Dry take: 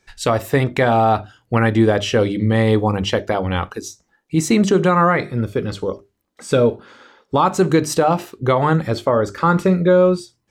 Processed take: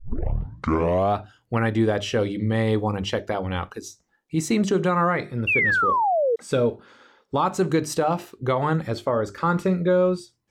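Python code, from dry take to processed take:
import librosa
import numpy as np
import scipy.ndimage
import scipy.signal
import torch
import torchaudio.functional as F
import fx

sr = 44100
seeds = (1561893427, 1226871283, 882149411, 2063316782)

y = fx.tape_start_head(x, sr, length_s=1.19)
y = fx.spec_paint(y, sr, seeds[0], shape='fall', start_s=5.47, length_s=0.89, low_hz=440.0, high_hz=2800.0, level_db=-14.0)
y = y * librosa.db_to_amplitude(-6.5)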